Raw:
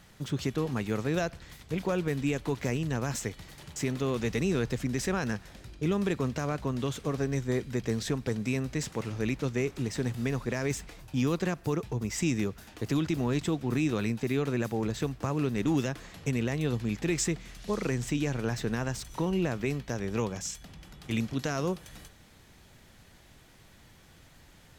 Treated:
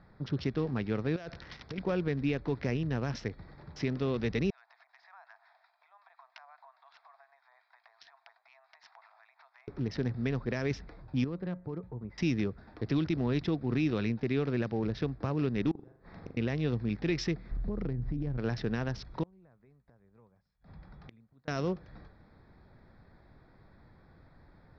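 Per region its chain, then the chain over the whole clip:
0:01.16–0:01.78: spectral tilt +2 dB per octave + compressor whose output falls as the input rises −38 dBFS + hard clipping −30 dBFS
0:04.50–0:09.68: downward compressor 20 to 1, threshold −34 dBFS + two-band tremolo in antiphase 5.6 Hz, depth 50%, crossover 890 Hz + Chebyshev high-pass with heavy ripple 660 Hz, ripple 3 dB
0:11.24–0:12.18: high-frequency loss of the air 280 metres + tuned comb filter 180 Hz, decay 0.28 s, harmonics odd
0:15.71–0:16.37: gate with flip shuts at −26 dBFS, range −27 dB + flutter between parallel walls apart 7 metres, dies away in 0.56 s + one half of a high-frequency compander decoder only
0:17.51–0:18.38: RIAA equalisation playback + downward compressor 16 to 1, threshold −28 dBFS
0:19.23–0:21.48: parametric band 320 Hz −6 dB 0.82 octaves + gate with flip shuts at −31 dBFS, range −28 dB
whole clip: adaptive Wiener filter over 15 samples; Chebyshev low-pass filter 5,500 Hz, order 6; dynamic equaliser 1,000 Hz, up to −4 dB, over −51 dBFS, Q 1.4

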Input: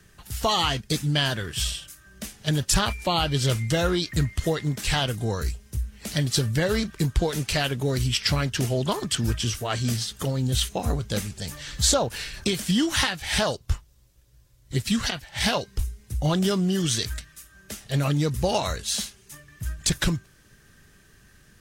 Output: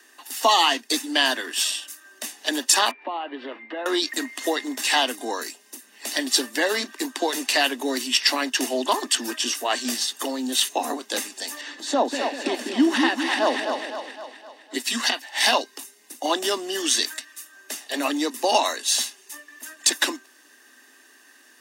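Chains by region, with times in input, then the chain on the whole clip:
0:02.91–0:03.86: band-pass filter 290–2,700 Hz + downward compressor, threshold −28 dBFS + high-frequency loss of the air 450 metres
0:11.61–0:14.74: RIAA equalisation playback + downward compressor 10 to 1, threshold −16 dBFS + echo with a time of its own for lows and highs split 530 Hz, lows 194 ms, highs 256 ms, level −5 dB
whole clip: Butterworth high-pass 250 Hz 96 dB per octave; comb filter 1.1 ms, depth 49%; level +4.5 dB

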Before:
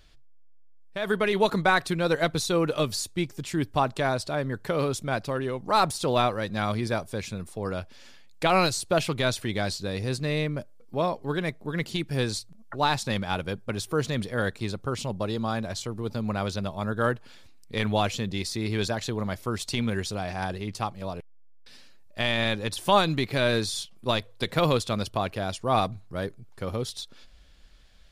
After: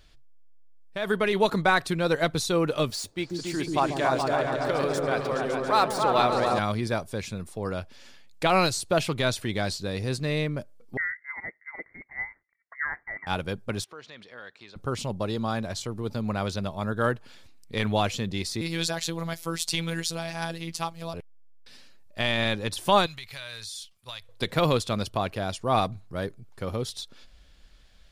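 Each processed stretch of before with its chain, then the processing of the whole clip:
0:02.90–0:06.59: running median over 3 samples + bass and treble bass −10 dB, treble −2 dB + echo whose low-pass opens from repeat to repeat 140 ms, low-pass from 400 Hz, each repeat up 2 octaves, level 0 dB
0:10.97–0:13.27: four-pole ladder high-pass 440 Hz, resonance 55% + voice inversion scrambler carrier 2,500 Hz
0:13.84–0:14.76: high-pass filter 1,500 Hz 6 dB per octave + downward compressor 2 to 1, threshold −44 dBFS + high-frequency loss of the air 160 metres
0:18.61–0:21.14: high-shelf EQ 2,600 Hz +9 dB + phases set to zero 166 Hz
0:23.06–0:24.29: guitar amp tone stack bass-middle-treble 10-0-10 + downward compressor 2.5 to 1, threshold −37 dBFS
whole clip: no processing

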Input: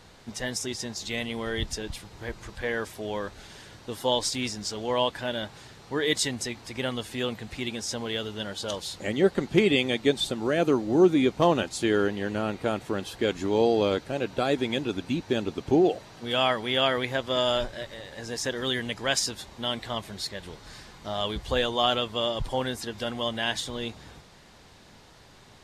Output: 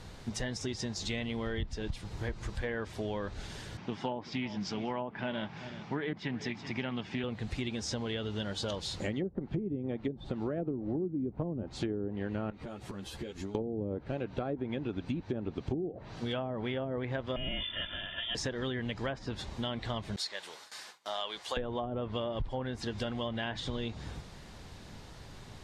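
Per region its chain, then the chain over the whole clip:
0:03.77–0:07.24: loudspeaker in its box 150–5,200 Hz, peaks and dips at 180 Hz +9 dB, 500 Hz −7 dB, 860 Hz +3 dB, 2,300 Hz +5 dB, 4,100 Hz −8 dB + single-tap delay 380 ms −18.5 dB + highs frequency-modulated by the lows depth 0.12 ms
0:12.50–0:13.55: downward compressor 10 to 1, threshold −37 dBFS + string-ensemble chorus
0:17.36–0:18.35: comb filter 2.8 ms, depth 91% + downward compressor 2.5 to 1, threshold −28 dBFS + voice inversion scrambler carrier 3,500 Hz
0:20.16–0:21.57: noise gate with hold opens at −35 dBFS, closes at −40 dBFS + high-pass filter 730 Hz + high-shelf EQ 7,800 Hz +6 dB
whole clip: treble cut that deepens with the level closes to 330 Hz, closed at −18 dBFS; low-shelf EQ 200 Hz +9.5 dB; downward compressor 6 to 1, threshold −32 dBFS

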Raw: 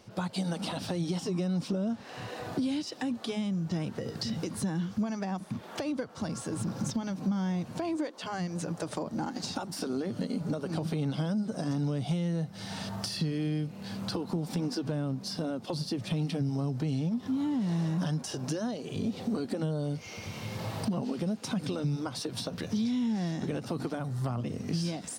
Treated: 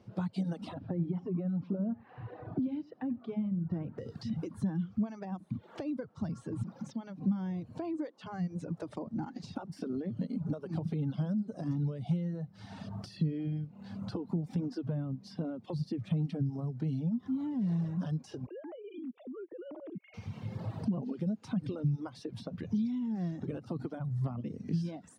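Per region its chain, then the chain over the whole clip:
0:00.74–0:03.98: low-pass filter 1,900 Hz + single-tap delay 90 ms −12.5 dB
0:06.63–0:07.17: high-pass filter 190 Hz + low-shelf EQ 370 Hz −4 dB + noise that follows the level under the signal 30 dB
0:18.46–0:20.14: three sine waves on the formant tracks + downward compressor, threshold −35 dBFS + transient designer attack −5 dB, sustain −11 dB
whole clip: reverb reduction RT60 1.8 s; high-pass filter 110 Hz; RIAA equalisation playback; level −7.5 dB

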